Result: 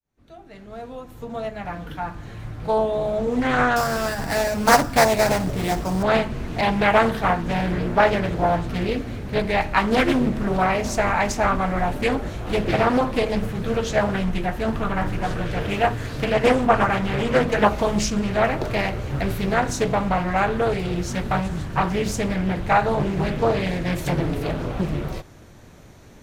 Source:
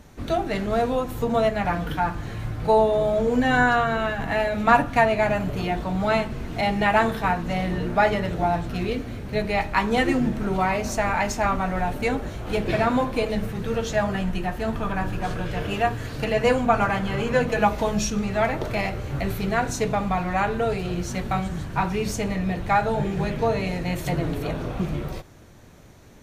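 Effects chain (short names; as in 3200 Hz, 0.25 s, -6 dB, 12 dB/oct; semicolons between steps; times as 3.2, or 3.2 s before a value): opening faded in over 5.12 s; 3.76–6.03 sample-rate reducer 6500 Hz, jitter 0%; Doppler distortion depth 0.57 ms; gain +2.5 dB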